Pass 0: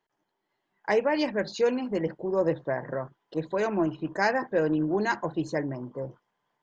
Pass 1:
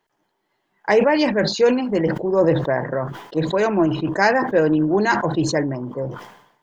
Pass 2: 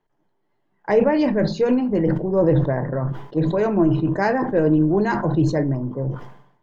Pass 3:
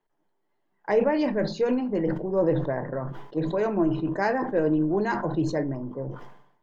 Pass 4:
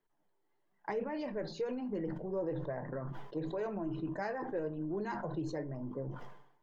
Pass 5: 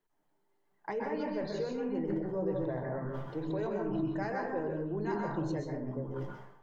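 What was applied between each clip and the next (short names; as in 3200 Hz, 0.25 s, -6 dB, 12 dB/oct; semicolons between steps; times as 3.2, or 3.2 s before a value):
sustainer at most 75 dB/s; gain +8 dB
tilt -3 dB/oct; shoebox room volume 140 m³, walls furnished, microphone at 0.39 m; gain -5 dB
bell 72 Hz -12 dB 2.1 oct; gain -4 dB
compressor 3:1, threshold -33 dBFS, peak gain reduction 12 dB; flange 1 Hz, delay 0.5 ms, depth 2.1 ms, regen -52%
plate-style reverb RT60 0.55 s, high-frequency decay 0.5×, pre-delay 0.115 s, DRR 0.5 dB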